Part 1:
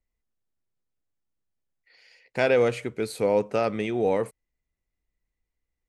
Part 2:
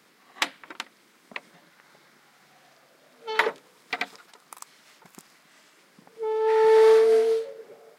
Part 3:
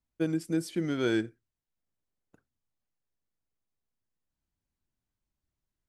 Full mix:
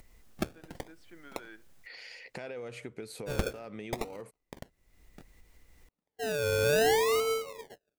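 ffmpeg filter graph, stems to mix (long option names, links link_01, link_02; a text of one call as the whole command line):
ffmpeg -i stem1.wav -i stem2.wav -i stem3.wav -filter_complex "[0:a]acompressor=mode=upward:threshold=-30dB:ratio=2.5,alimiter=limit=-18.5dB:level=0:latency=1,acompressor=threshold=-30dB:ratio=6,volume=-4dB,asplit=2[link_01][link_02];[1:a]agate=range=-36dB:threshold=-45dB:ratio=16:detection=peak,acrusher=samples=35:mix=1:aa=0.000001:lfo=1:lforange=21:lforate=0.65,volume=2dB[link_03];[2:a]bandpass=frequency=1500:width_type=q:width=1.1:csg=0,adelay=350,volume=-3dB[link_04];[link_02]apad=whole_len=275048[link_05];[link_04][link_05]sidechaincompress=threshold=-60dB:ratio=8:attack=16:release=390[link_06];[link_01][link_03][link_06]amix=inputs=3:normalize=0,acompressor=threshold=-44dB:ratio=1.5" out.wav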